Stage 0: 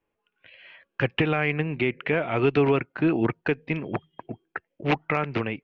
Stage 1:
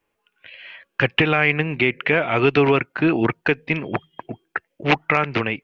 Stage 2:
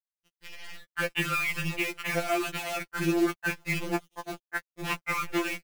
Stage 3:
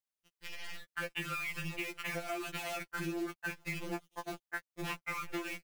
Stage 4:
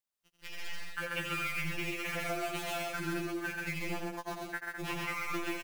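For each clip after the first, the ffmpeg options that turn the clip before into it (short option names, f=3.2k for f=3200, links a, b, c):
-af "tiltshelf=f=970:g=-3.5,volume=6.5dB"
-af "acompressor=threshold=-23dB:ratio=5,acrusher=bits=6:dc=4:mix=0:aa=0.000001,afftfilt=real='re*2.83*eq(mod(b,8),0)':imag='im*2.83*eq(mod(b,8),0)':win_size=2048:overlap=0.75"
-af "acompressor=threshold=-37dB:ratio=4"
-af "aecho=1:1:87.46|134.1|207:0.501|0.794|0.447"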